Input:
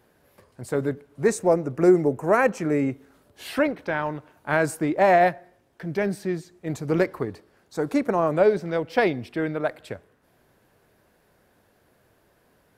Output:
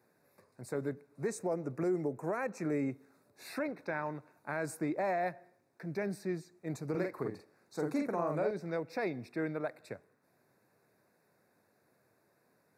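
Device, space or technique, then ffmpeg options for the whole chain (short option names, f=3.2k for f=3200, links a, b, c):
PA system with an anti-feedback notch: -filter_complex "[0:a]highpass=f=110:w=0.5412,highpass=f=110:w=1.3066,asuperstop=centerf=3100:order=8:qfactor=3.1,alimiter=limit=-16dB:level=0:latency=1:release=166,asettb=1/sr,asplit=3[a][b][c];[a]atrim=end=6.904[d];[b]atrim=start=6.9:end=8.51,asetpts=PTS-STARTPTS,afade=t=in:d=0.004:c=qsin,afade=t=out:st=1.606:d=0.004:c=qsin,asplit=2[e][f];[f]adelay=46,volume=-3.5dB[g];[e][g]amix=inputs=2:normalize=0,atrim=end_sample=71001[h];[c]atrim=start=8.506[i];[d][h]acrossfade=d=0.004:c1=hsin:c2=qsin[j];[j][i]acrossfade=d=0.004:c1=qsin:c2=hsin,volume=-9dB"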